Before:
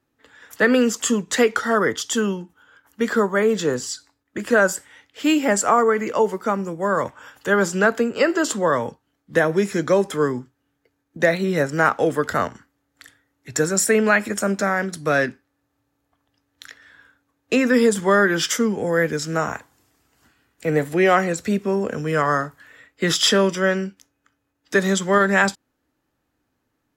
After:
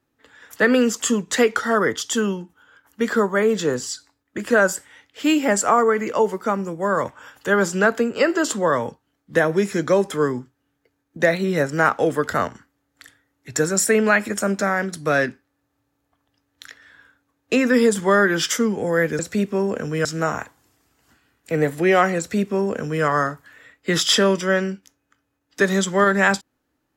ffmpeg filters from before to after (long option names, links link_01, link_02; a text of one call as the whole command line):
ffmpeg -i in.wav -filter_complex "[0:a]asplit=3[link_01][link_02][link_03];[link_01]atrim=end=19.192[link_04];[link_02]atrim=start=21.318:end=22.182[link_05];[link_03]atrim=start=19.188[link_06];[link_04][link_05]acrossfade=duration=0.004:curve1=hsin:curve2=hsin[link_07];[link_07][link_06]acrossfade=duration=0.004:curve1=hsin:curve2=hsin" out.wav